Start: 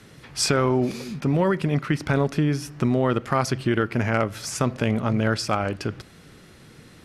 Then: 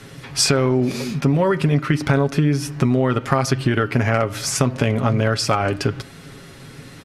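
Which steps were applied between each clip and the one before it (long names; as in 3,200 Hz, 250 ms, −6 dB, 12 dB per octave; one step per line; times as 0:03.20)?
comb filter 7.3 ms, depth 47%
hum removal 304.2 Hz, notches 14
downward compressor, threshold −21 dBFS, peak gain reduction 7.5 dB
level +7.5 dB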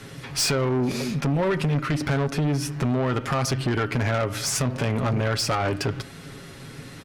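tube saturation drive 19 dB, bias 0.3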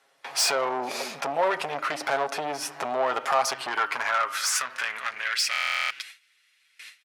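noise gate with hold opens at −28 dBFS
high-pass filter sweep 720 Hz → 2,300 Hz, 0:03.25–0:05.66
buffer that repeats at 0:05.51, samples 1,024, times 16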